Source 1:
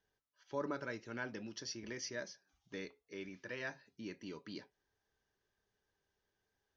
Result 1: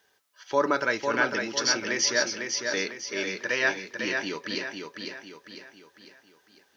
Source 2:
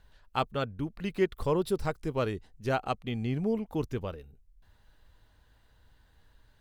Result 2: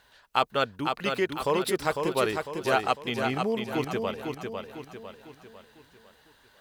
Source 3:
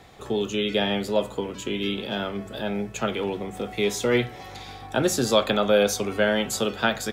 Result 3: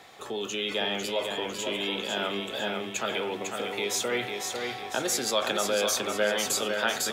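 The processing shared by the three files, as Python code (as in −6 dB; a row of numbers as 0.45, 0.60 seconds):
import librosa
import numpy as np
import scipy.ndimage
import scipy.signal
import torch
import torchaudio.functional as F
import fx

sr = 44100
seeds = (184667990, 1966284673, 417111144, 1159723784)

p1 = fx.over_compress(x, sr, threshold_db=-29.0, ratio=-1.0)
p2 = x + (p1 * 10.0 ** (-1.5 / 20.0))
p3 = fx.highpass(p2, sr, hz=690.0, slope=6)
p4 = fx.echo_feedback(p3, sr, ms=501, feedback_pct=44, wet_db=-5.0)
y = p4 * 10.0 ** (-30 / 20.0) / np.sqrt(np.mean(np.square(p4)))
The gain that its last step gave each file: +14.5, +4.0, −5.0 decibels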